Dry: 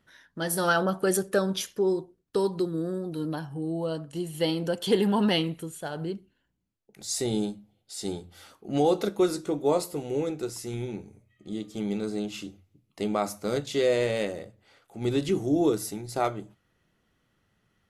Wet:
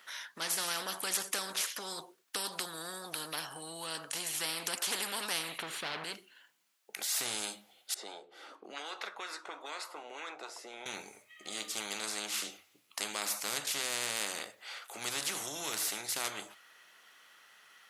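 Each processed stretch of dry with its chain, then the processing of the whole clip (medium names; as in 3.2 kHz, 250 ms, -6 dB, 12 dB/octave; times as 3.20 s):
5.58–6.04 s: waveshaping leveller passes 3 + distance through air 380 m
7.94–10.86 s: high-pass 50 Hz + auto-wah 270–1400 Hz, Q 3.3, up, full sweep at -23.5 dBFS + three bands compressed up and down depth 70%
whole clip: high-pass 1.1 kHz 12 dB/octave; spectrum-flattening compressor 4:1; trim -2 dB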